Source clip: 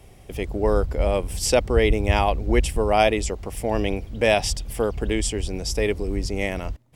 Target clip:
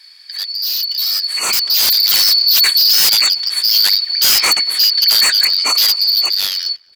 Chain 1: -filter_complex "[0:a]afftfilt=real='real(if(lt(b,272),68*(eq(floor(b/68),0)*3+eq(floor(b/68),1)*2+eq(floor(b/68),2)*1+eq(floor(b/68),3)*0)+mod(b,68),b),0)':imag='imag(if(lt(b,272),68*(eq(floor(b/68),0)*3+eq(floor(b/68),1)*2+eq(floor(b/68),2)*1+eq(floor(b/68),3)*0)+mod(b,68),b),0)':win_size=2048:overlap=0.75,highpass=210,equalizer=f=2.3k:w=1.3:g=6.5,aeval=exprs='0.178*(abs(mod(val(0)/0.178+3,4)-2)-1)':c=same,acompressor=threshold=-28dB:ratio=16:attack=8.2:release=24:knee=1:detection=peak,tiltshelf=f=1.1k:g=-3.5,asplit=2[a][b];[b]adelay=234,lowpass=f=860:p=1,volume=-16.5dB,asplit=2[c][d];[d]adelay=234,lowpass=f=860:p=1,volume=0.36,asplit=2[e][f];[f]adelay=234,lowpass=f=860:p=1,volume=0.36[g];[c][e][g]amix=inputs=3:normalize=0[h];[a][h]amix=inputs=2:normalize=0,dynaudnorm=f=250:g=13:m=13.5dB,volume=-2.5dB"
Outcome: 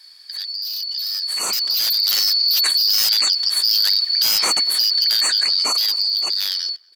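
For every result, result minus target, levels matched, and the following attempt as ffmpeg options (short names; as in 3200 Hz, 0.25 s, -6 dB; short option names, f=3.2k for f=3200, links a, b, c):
compressor: peak gain reduction +10 dB; 2000 Hz band -3.5 dB
-filter_complex "[0:a]afftfilt=real='real(if(lt(b,272),68*(eq(floor(b/68),0)*3+eq(floor(b/68),1)*2+eq(floor(b/68),2)*1+eq(floor(b/68),3)*0)+mod(b,68),b),0)':imag='imag(if(lt(b,272),68*(eq(floor(b/68),0)*3+eq(floor(b/68),1)*2+eq(floor(b/68),2)*1+eq(floor(b/68),3)*0)+mod(b,68),b),0)':win_size=2048:overlap=0.75,highpass=210,equalizer=f=2.3k:w=1.3:g=6.5,aeval=exprs='0.178*(abs(mod(val(0)/0.178+3,4)-2)-1)':c=same,tiltshelf=f=1.1k:g=-3.5,asplit=2[a][b];[b]adelay=234,lowpass=f=860:p=1,volume=-16.5dB,asplit=2[c][d];[d]adelay=234,lowpass=f=860:p=1,volume=0.36,asplit=2[e][f];[f]adelay=234,lowpass=f=860:p=1,volume=0.36[g];[c][e][g]amix=inputs=3:normalize=0[h];[a][h]amix=inputs=2:normalize=0,dynaudnorm=f=250:g=13:m=13.5dB,volume=-2.5dB"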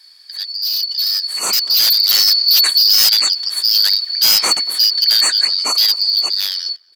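2000 Hz band -4.5 dB
-filter_complex "[0:a]afftfilt=real='real(if(lt(b,272),68*(eq(floor(b/68),0)*3+eq(floor(b/68),1)*2+eq(floor(b/68),2)*1+eq(floor(b/68),3)*0)+mod(b,68),b),0)':imag='imag(if(lt(b,272),68*(eq(floor(b/68),0)*3+eq(floor(b/68),1)*2+eq(floor(b/68),2)*1+eq(floor(b/68),3)*0)+mod(b,68),b),0)':win_size=2048:overlap=0.75,highpass=210,equalizer=f=2.3k:w=1.3:g=16.5,aeval=exprs='0.178*(abs(mod(val(0)/0.178+3,4)-2)-1)':c=same,tiltshelf=f=1.1k:g=-3.5,asplit=2[a][b];[b]adelay=234,lowpass=f=860:p=1,volume=-16.5dB,asplit=2[c][d];[d]adelay=234,lowpass=f=860:p=1,volume=0.36,asplit=2[e][f];[f]adelay=234,lowpass=f=860:p=1,volume=0.36[g];[c][e][g]amix=inputs=3:normalize=0[h];[a][h]amix=inputs=2:normalize=0,dynaudnorm=f=250:g=13:m=13.5dB,volume=-2.5dB"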